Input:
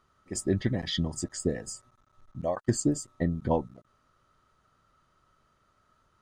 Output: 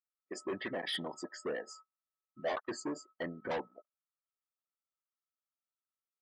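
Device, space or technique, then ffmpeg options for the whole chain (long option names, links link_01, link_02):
walkie-talkie: -filter_complex "[0:a]highpass=470,lowpass=2900,asoftclip=type=hard:threshold=-36dB,agate=range=-18dB:threshold=-59dB:ratio=16:detection=peak,asettb=1/sr,asplit=3[link_01][link_02][link_03];[link_01]atrim=end=1.684[link_04];[link_02]atrim=start=1.68:end=2.56,asetpts=PTS-STARTPTS,afade=type=in:duration=0.004:curve=qsin,afade=type=out:start_time=0.876:duration=0.004:curve=qsin,asplit=2[link_05][link_06];[link_06]adelay=14,volume=-2dB[link_07];[link_05][link_07]amix=inputs=2:normalize=0,atrim=end_sample=38808[link_08];[link_03]atrim=start=2.556[link_09];[link_04][link_08]acrossfade=duration=0.004:curve1=hsin:curve2=qsin[link_10];[link_10][link_09]acrossfade=duration=0.004:curve1=qsin:curve2=hsin,lowshelf=frequency=110:gain=-11,afftdn=noise_reduction=23:noise_floor=-54,volume=3.5dB"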